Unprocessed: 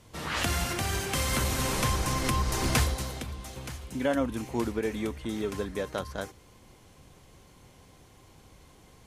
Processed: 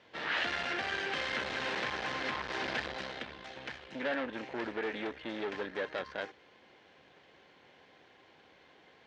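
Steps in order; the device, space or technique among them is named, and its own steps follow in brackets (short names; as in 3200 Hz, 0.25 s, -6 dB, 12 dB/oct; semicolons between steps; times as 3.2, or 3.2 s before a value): guitar amplifier (tube stage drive 33 dB, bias 0.75; tone controls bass -15 dB, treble +8 dB; speaker cabinet 100–3400 Hz, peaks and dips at 110 Hz -4 dB, 1100 Hz -5 dB, 1700 Hz +7 dB); gain +4 dB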